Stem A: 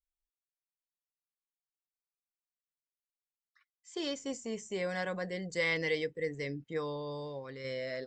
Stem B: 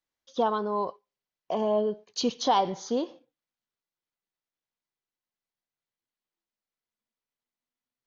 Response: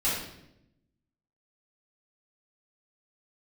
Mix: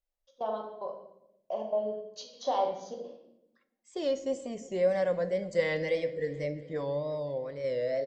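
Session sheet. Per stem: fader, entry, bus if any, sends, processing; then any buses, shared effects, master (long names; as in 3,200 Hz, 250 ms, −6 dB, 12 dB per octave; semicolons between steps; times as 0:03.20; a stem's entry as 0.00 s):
−5.0 dB, 0.00 s, send −21 dB, echo send −21.5 dB, low-shelf EQ 280 Hz +8.5 dB; notch filter 450 Hz, Q 12; tape wow and flutter 90 cents
−15.5 dB, 0.00 s, send −9 dB, no echo send, low-shelf EQ 500 Hz −4.5 dB; gate pattern "xxx.xx..x.xxx" 148 BPM −24 dB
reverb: on, RT60 0.85 s, pre-delay 3 ms
echo: repeating echo 356 ms, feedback 58%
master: parametric band 580 Hz +14.5 dB 0.7 octaves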